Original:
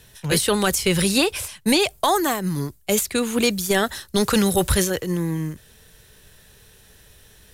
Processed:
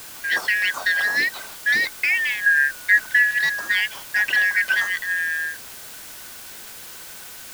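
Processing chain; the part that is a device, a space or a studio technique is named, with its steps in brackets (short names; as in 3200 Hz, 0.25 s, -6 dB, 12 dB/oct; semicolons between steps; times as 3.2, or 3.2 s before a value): 2.46–3.31 tilt shelf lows +9 dB; split-band scrambled radio (four-band scrambler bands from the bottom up 4123; BPF 380–2900 Hz; white noise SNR 16 dB)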